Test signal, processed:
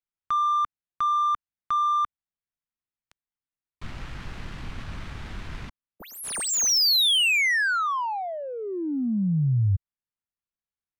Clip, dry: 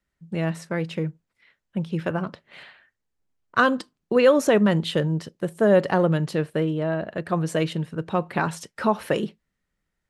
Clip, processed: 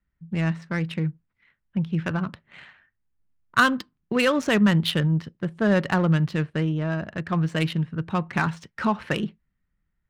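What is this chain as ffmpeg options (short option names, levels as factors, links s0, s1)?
-af "equalizer=f=520:t=o:w=2:g=-14,adynamicsmooth=sensitivity=5:basefreq=1700,volume=2.11"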